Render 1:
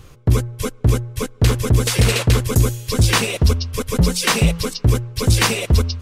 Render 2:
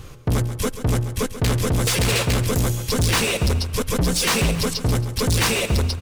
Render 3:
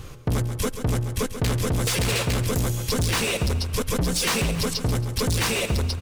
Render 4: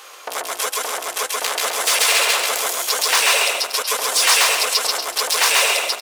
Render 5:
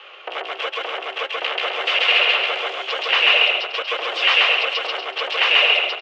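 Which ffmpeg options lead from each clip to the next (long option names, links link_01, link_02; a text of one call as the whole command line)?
ffmpeg -i in.wav -filter_complex "[0:a]asoftclip=type=tanh:threshold=-20.5dB,asplit=2[link_01][link_02];[link_02]aecho=0:1:137|274|411|548:0.251|0.098|0.0382|0.0149[link_03];[link_01][link_03]amix=inputs=2:normalize=0,volume=4dB" out.wav
ffmpeg -i in.wav -af "acompressor=threshold=-21dB:ratio=6" out.wav
ffmpeg -i in.wav -filter_complex "[0:a]highpass=frequency=620:width=0.5412,highpass=frequency=620:width=1.3066,asplit=2[link_01][link_02];[link_02]aecho=0:1:134.1|236.2:0.891|0.447[link_03];[link_01][link_03]amix=inputs=2:normalize=0,volume=8dB" out.wav
ffmpeg -i in.wav -af "afreqshift=33,highpass=110,equalizer=frequency=160:width_type=q:width=4:gain=-9,equalizer=frequency=260:width_type=q:width=4:gain=-9,equalizer=frequency=370:width_type=q:width=4:gain=7,equalizer=frequency=980:width_type=q:width=4:gain=-6,equalizer=frequency=1600:width_type=q:width=4:gain=-3,equalizer=frequency=2900:width_type=q:width=4:gain=10,lowpass=frequency=3000:width=0.5412,lowpass=frequency=3000:width=1.3066" out.wav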